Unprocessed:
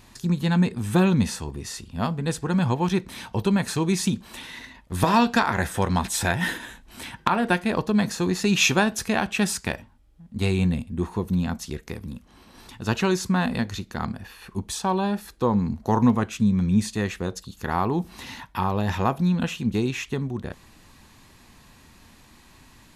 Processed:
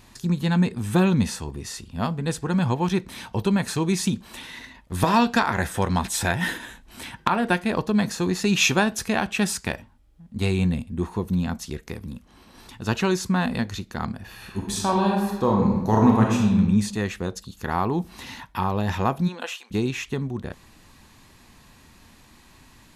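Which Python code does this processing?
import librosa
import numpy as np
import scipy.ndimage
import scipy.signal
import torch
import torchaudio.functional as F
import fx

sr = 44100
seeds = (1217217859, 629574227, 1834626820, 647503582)

y = fx.reverb_throw(x, sr, start_s=14.22, length_s=2.28, rt60_s=1.1, drr_db=-1.0)
y = fx.highpass(y, sr, hz=fx.line((19.27, 270.0), (19.7, 830.0)), slope=24, at=(19.27, 19.7), fade=0.02)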